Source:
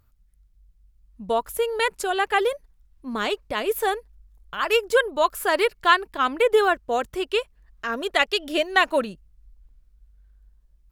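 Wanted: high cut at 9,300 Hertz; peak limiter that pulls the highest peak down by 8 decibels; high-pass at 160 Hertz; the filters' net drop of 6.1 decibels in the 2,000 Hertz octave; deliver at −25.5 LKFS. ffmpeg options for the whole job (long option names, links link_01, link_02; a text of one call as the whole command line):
ffmpeg -i in.wav -af "highpass=160,lowpass=9300,equalizer=frequency=2000:width_type=o:gain=-8,volume=1.5dB,alimiter=limit=-14dB:level=0:latency=1" out.wav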